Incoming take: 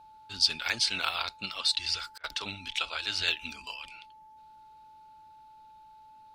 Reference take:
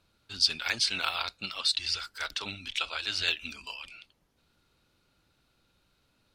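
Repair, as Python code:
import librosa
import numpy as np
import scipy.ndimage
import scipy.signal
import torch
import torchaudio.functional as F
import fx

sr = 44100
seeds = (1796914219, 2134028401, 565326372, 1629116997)

y = fx.notch(x, sr, hz=870.0, q=30.0)
y = fx.fix_interpolate(y, sr, at_s=(2.18,), length_ms=56.0)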